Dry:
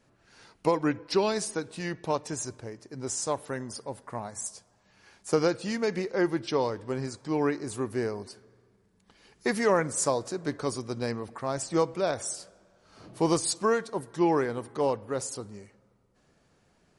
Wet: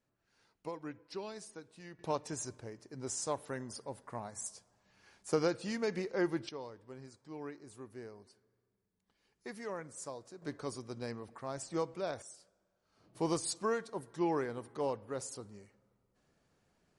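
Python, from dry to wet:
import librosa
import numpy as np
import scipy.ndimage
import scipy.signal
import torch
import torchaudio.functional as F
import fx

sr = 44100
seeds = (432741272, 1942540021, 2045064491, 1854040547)

y = fx.gain(x, sr, db=fx.steps((0.0, -17.5), (1.99, -6.5), (6.49, -18.0), (10.42, -10.0), (12.22, -18.0), (13.15, -8.5)))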